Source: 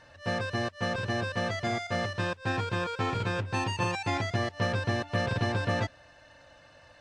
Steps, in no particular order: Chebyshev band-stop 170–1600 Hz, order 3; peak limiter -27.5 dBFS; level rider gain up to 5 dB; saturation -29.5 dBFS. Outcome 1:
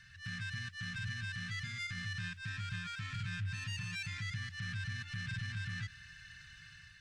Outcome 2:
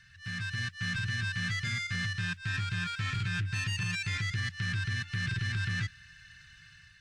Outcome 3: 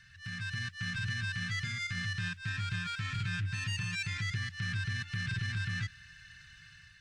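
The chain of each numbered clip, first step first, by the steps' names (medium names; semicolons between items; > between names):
level rider > peak limiter > saturation > Chebyshev band-stop; Chebyshev band-stop > peak limiter > saturation > level rider; peak limiter > Chebyshev band-stop > saturation > level rider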